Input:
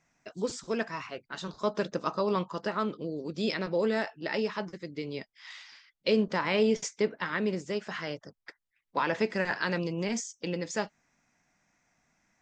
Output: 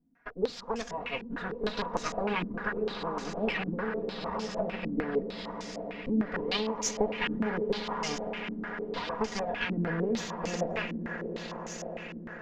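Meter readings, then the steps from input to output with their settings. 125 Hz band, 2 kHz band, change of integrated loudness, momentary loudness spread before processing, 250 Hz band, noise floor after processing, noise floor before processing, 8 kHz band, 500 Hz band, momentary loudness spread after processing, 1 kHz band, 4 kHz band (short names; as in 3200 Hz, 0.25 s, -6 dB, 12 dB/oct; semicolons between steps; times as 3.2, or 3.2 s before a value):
+0.5 dB, -0.5 dB, -1.5 dB, 12 LU, 0.0 dB, -44 dBFS, -80 dBFS, +2.0 dB, -2.0 dB, 8 LU, 0.0 dB, +1.0 dB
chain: minimum comb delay 4.2 ms; compressor 4:1, threshold -34 dBFS, peak gain reduction 11.5 dB; random-step tremolo; on a send: swelling echo 0.101 s, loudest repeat 8, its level -15.5 dB; on the sum: stepped low-pass 6.6 Hz 270–6300 Hz; gain +5 dB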